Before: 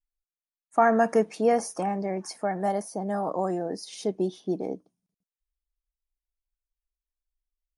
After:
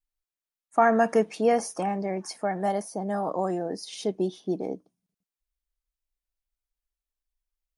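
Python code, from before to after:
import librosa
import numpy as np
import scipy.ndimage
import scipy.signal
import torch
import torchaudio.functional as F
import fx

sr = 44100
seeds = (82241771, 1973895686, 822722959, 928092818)

y = fx.dynamic_eq(x, sr, hz=3100.0, q=1.6, threshold_db=-49.0, ratio=4.0, max_db=5)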